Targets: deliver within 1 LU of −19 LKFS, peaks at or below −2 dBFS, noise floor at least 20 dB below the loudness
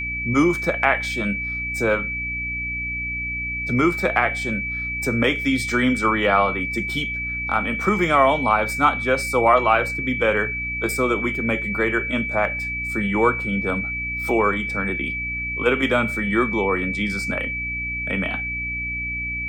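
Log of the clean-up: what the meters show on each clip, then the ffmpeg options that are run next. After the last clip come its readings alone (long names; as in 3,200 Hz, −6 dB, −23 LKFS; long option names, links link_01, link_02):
mains hum 60 Hz; hum harmonics up to 300 Hz; level of the hum −32 dBFS; interfering tone 2,300 Hz; level of the tone −25 dBFS; integrated loudness −21.0 LKFS; sample peak −3.0 dBFS; target loudness −19.0 LKFS
→ -af "bandreject=frequency=60:width_type=h:width=6,bandreject=frequency=120:width_type=h:width=6,bandreject=frequency=180:width_type=h:width=6,bandreject=frequency=240:width_type=h:width=6,bandreject=frequency=300:width_type=h:width=6"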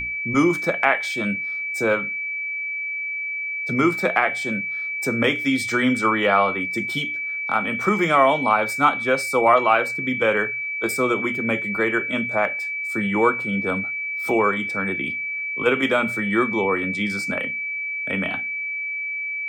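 mains hum none found; interfering tone 2,300 Hz; level of the tone −25 dBFS
→ -af "bandreject=frequency=2300:width=30"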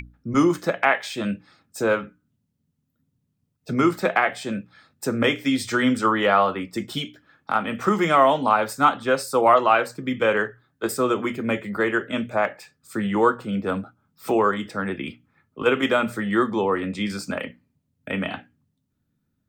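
interfering tone none found; integrated loudness −22.5 LKFS; sample peak −3.5 dBFS; target loudness −19.0 LKFS
→ -af "volume=3.5dB,alimiter=limit=-2dB:level=0:latency=1"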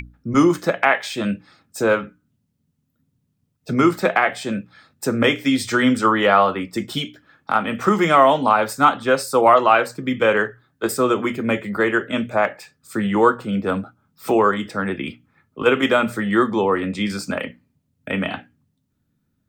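integrated loudness −19.5 LKFS; sample peak −2.0 dBFS; background noise floor −71 dBFS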